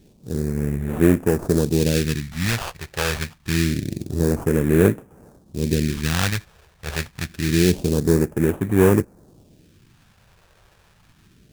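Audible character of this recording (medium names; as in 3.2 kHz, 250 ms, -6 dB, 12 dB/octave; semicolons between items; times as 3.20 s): aliases and images of a low sample rate 2.1 kHz, jitter 20%; phasing stages 2, 0.26 Hz, lowest notch 250–4400 Hz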